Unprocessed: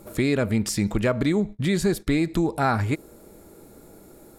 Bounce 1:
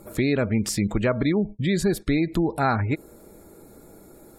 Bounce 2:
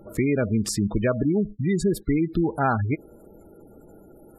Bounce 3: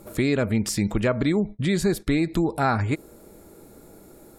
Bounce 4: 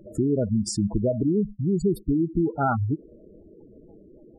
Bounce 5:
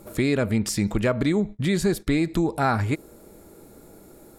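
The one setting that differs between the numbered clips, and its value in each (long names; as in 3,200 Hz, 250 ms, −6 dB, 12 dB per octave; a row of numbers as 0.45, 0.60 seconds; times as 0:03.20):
gate on every frequency bin, under each frame's peak: −35, −20, −45, −10, −60 decibels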